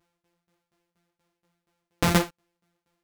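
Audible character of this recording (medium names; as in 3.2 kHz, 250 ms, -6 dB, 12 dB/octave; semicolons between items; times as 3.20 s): a buzz of ramps at a fixed pitch in blocks of 256 samples; tremolo saw down 4.2 Hz, depth 95%; a shimmering, thickened sound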